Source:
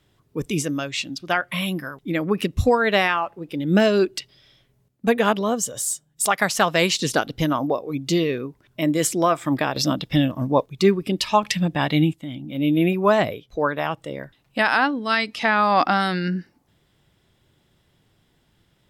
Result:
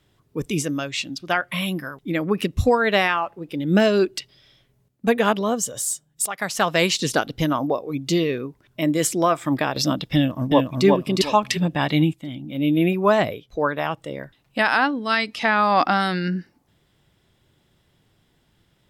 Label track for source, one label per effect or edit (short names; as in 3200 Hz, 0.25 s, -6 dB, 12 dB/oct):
6.260000	6.730000	fade in, from -13 dB
10.150000	10.850000	echo throw 0.36 s, feedback 30%, level -2 dB